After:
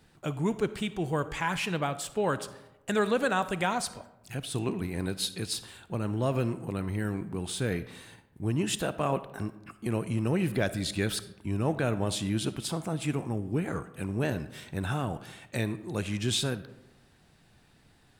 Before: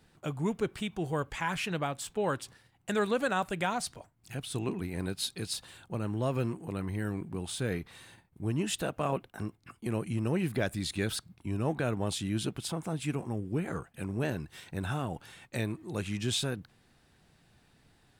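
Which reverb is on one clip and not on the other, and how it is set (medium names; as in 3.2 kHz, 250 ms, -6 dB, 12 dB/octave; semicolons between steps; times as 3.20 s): algorithmic reverb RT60 1 s, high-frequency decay 0.5×, pre-delay 15 ms, DRR 14 dB; trim +2.5 dB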